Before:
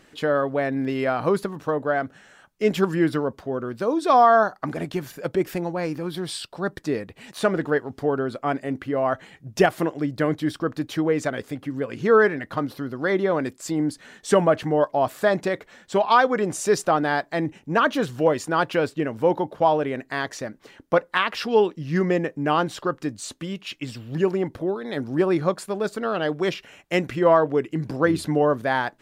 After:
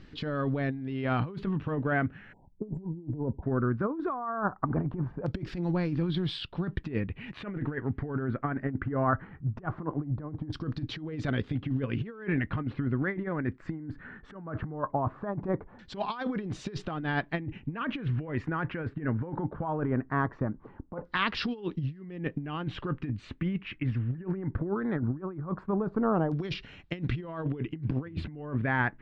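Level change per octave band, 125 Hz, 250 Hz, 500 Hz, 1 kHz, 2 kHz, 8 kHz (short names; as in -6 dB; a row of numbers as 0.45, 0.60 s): +0.5 dB, -6.0 dB, -14.5 dB, -12.0 dB, -8.5 dB, under -20 dB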